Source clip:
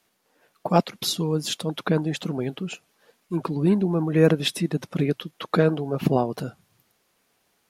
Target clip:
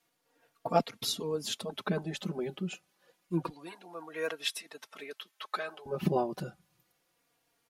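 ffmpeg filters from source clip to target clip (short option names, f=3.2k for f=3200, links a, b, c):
-filter_complex "[0:a]asettb=1/sr,asplit=3[a][b][c];[a]atrim=end=3.494[d];[b]atrim=start=3.49:end=5.86,asetpts=PTS-STARTPTS,afade=t=in:d=0.004:c=qsin,afade=t=out:st=2.366:d=0.004:c=qsin,highpass=910[e];[c]atrim=start=5.856[f];[d][e]acrossfade=d=0.004:c1=hsin:c2=qsin[g];[g][f]acrossfade=d=0.004:c1=qsin:c2=hsin,asplit=2[h][i];[i]adelay=3.7,afreqshift=-0.28[j];[h][j]amix=inputs=2:normalize=1,volume=-4dB"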